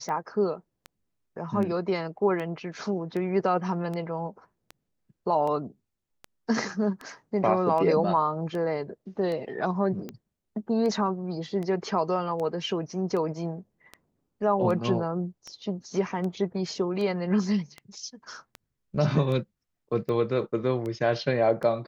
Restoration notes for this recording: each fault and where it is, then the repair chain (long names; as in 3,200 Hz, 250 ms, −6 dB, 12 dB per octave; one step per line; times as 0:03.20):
scratch tick 78 rpm −23 dBFS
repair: click removal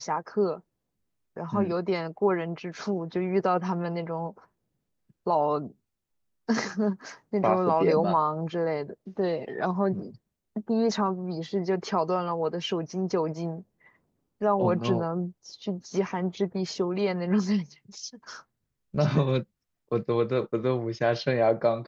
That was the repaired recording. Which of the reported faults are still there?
none of them is left